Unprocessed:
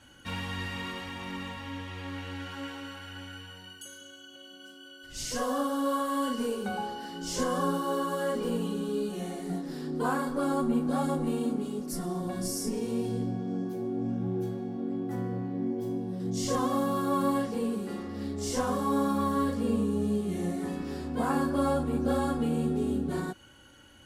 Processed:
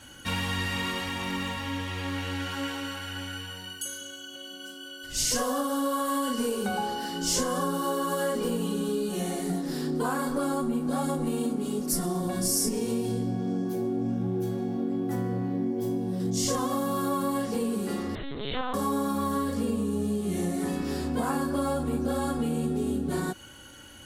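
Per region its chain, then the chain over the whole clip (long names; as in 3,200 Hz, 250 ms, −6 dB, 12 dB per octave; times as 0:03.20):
0:18.15–0:18.74: spectral tilt +3.5 dB per octave + linear-prediction vocoder at 8 kHz pitch kept
whole clip: downward compressor, threshold −31 dBFS; high-shelf EQ 5,300 Hz +8 dB; level +6 dB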